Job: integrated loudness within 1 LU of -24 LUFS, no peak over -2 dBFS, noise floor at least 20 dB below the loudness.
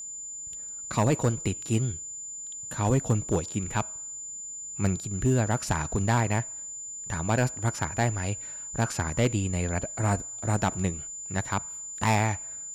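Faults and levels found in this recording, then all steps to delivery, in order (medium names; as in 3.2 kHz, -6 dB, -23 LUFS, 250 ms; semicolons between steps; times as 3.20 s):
clipped samples 0.5%; clipping level -17.0 dBFS; steady tone 7.1 kHz; tone level -36 dBFS; loudness -28.5 LUFS; peak level -17.0 dBFS; loudness target -24.0 LUFS
-> clip repair -17 dBFS; band-stop 7.1 kHz, Q 30; trim +4.5 dB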